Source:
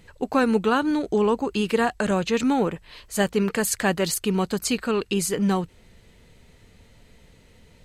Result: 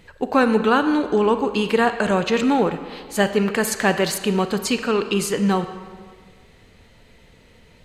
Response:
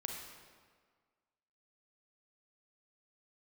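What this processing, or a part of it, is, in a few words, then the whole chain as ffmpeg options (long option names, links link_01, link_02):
filtered reverb send: -filter_complex "[0:a]asplit=2[link_01][link_02];[link_02]highpass=frequency=330:poles=1,lowpass=5300[link_03];[1:a]atrim=start_sample=2205[link_04];[link_03][link_04]afir=irnorm=-1:irlink=0,volume=-0.5dB[link_05];[link_01][link_05]amix=inputs=2:normalize=0"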